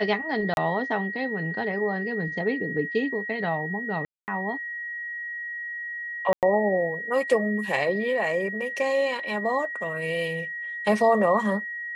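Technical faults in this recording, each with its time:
whine 1.9 kHz -31 dBFS
0.54–0.57 s: dropout 31 ms
4.05–4.28 s: dropout 229 ms
6.33–6.43 s: dropout 98 ms

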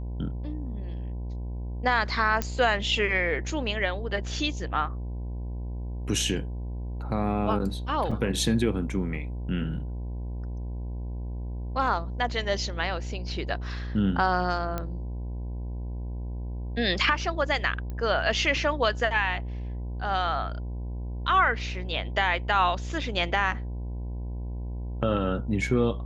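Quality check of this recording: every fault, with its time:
buzz 60 Hz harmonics 17 -33 dBFS
2.42 s: pop -12 dBFS
8.11–8.12 s: dropout 5 ms
14.78 s: pop -16 dBFS
17.90 s: pop -24 dBFS

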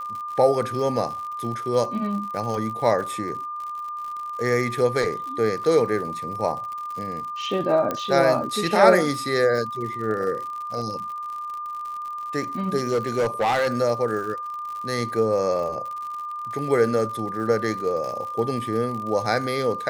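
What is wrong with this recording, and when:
crackle 81 per s -32 dBFS
whine 1.2 kHz -29 dBFS
5.64 s: dropout 2.4 ms
7.91 s: pop -12 dBFS
12.76–13.79 s: clipped -17.5 dBFS

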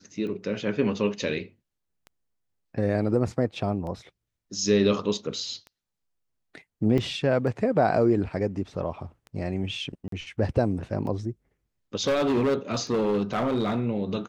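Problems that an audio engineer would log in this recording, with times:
tick 33 1/3 rpm -28 dBFS
6.98 s: dropout 3.2 ms
10.08–10.12 s: dropout 43 ms
12.07–13.88 s: clipped -20 dBFS

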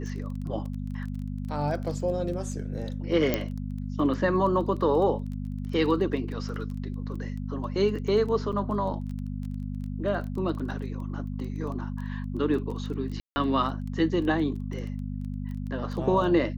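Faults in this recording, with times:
crackle 14 per s -35 dBFS
hum 50 Hz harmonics 5 -33 dBFS
3.34 s: pop -10 dBFS
8.52–8.53 s: dropout 7.4 ms
13.20–13.36 s: dropout 160 ms

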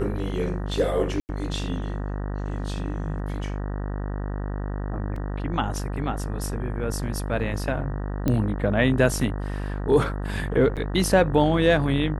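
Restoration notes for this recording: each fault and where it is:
buzz 50 Hz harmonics 38 -29 dBFS
1.20–1.29 s: dropout 89 ms
5.16 s: dropout 3.1 ms
8.28 s: pop -11 dBFS
10.76–10.77 s: dropout 7.9 ms

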